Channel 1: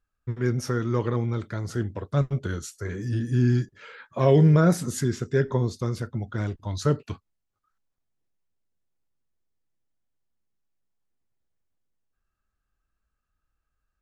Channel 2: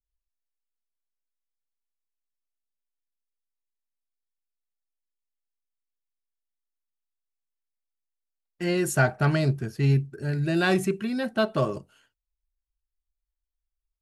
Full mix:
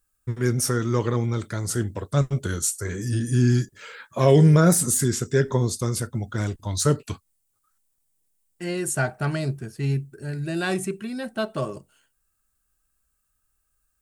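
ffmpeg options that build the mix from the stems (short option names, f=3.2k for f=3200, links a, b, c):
-filter_complex "[0:a]deesser=0.7,aemphasis=mode=production:type=50fm,volume=2.5dB[a];[1:a]volume=-3dB[b];[a][b]amix=inputs=2:normalize=0,equalizer=f=8.7k:w=2:g=10.5"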